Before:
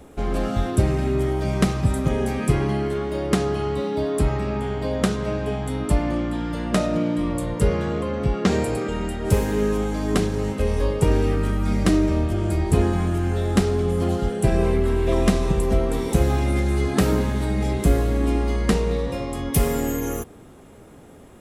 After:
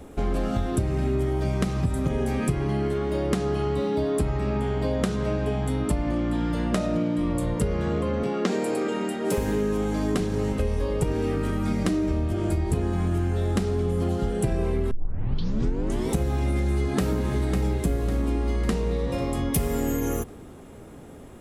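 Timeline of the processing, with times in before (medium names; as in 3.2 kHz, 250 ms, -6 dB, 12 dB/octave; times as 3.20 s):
8.23–9.38 s: high-pass 200 Hz 24 dB/octave
14.91 s: tape start 1.19 s
16.69–17.25 s: echo throw 550 ms, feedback 50%, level -6.5 dB
whole clip: bass shelf 340 Hz +4 dB; hum notches 50/100/150/200 Hz; compression, threshold -21 dBFS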